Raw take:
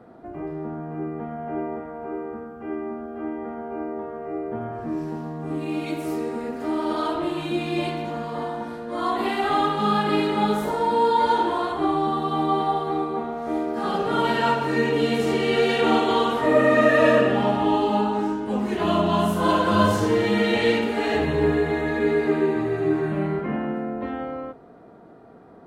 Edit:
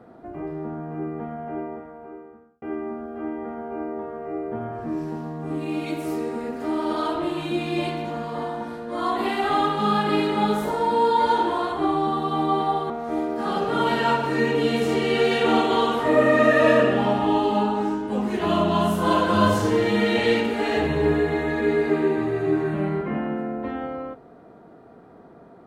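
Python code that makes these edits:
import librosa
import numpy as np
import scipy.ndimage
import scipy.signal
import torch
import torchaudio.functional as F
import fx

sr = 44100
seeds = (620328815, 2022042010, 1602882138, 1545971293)

y = fx.edit(x, sr, fx.fade_out_span(start_s=1.26, length_s=1.36),
    fx.cut(start_s=12.9, length_s=0.38), tone=tone)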